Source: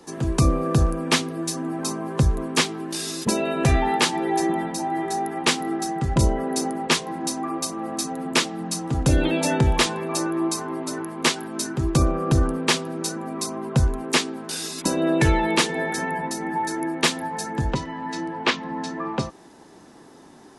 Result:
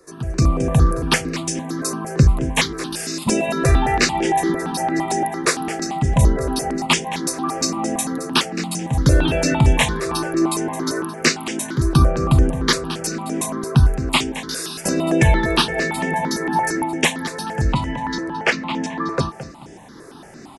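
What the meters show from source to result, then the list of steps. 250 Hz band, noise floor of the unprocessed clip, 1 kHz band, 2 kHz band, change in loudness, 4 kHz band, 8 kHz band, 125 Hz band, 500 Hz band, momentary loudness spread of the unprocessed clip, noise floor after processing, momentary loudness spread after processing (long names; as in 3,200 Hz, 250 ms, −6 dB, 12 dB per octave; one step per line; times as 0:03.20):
+3.0 dB, −48 dBFS, +3.5 dB, +4.5 dB, +4.0 dB, +2.5 dB, +3.0 dB, +5.5 dB, +3.0 dB, 8 LU, −40 dBFS, 8 LU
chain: repeating echo 218 ms, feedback 26%, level −13 dB
automatic gain control
step-sequenced phaser 8.8 Hz 840–4,100 Hz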